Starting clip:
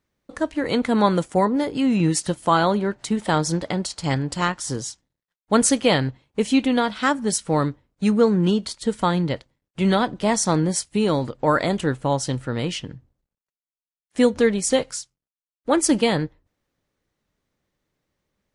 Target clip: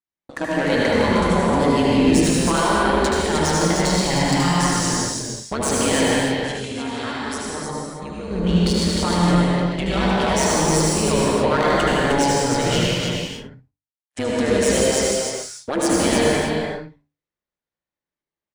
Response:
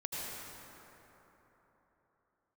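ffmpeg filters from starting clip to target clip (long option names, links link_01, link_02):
-filter_complex "[0:a]agate=range=-27dB:threshold=-49dB:ratio=16:detection=peak,lowshelf=frequency=140:gain=9,bandreject=frequency=50:width_type=h:width=6,bandreject=frequency=100:width_type=h:width=6,bandreject=frequency=150:width_type=h:width=6,alimiter=limit=-15dB:level=0:latency=1,asettb=1/sr,asplit=3[link_01][link_02][link_03];[link_01]atrim=end=6.034[link_04];[link_02]atrim=start=6.03:end=8.31,asetpts=PTS-STARTPTS,afade=type=in:duration=0.004:curve=qsin,afade=type=out:start_time=2.276:duration=0.004:curve=qsin,acompressor=threshold=-36dB:ratio=4[link_05];[link_03]atrim=start=8.306[link_06];[link_04][link_05]acrossfade=duration=0.004:curve1=hsin:curve2=qsin[link_07];[link_07][link_06]acrossfade=duration=0.004:curve1=qsin:curve2=hsin,asplit=2[link_08][link_09];[link_09]highpass=frequency=720:poles=1,volume=19dB,asoftclip=type=tanh:threshold=-9.5dB[link_10];[link_08][link_10]amix=inputs=2:normalize=0,lowpass=frequency=6400:poles=1,volume=-6dB,tremolo=f=140:d=0.857,flanger=delay=1:depth=2:regen=-82:speed=0.22:shape=sinusoidal,aecho=1:1:75|307|369:0.501|0.631|0.119[link_11];[1:a]atrim=start_sample=2205,afade=type=out:start_time=0.37:duration=0.01,atrim=end_sample=16758[link_12];[link_11][link_12]afir=irnorm=-1:irlink=0,volume=6.5dB"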